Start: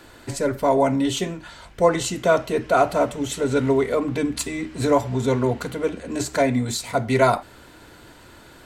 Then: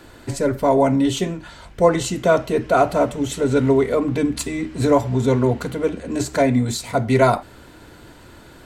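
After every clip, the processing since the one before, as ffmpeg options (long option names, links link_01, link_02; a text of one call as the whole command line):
ffmpeg -i in.wav -af "lowshelf=frequency=500:gain=5" out.wav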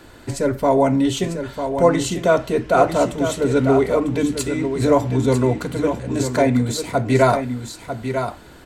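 ffmpeg -i in.wav -af "aecho=1:1:947:0.398" out.wav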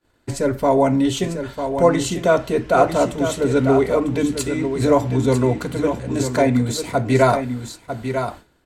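ffmpeg -i in.wav -af "agate=range=-33dB:threshold=-31dB:ratio=3:detection=peak" out.wav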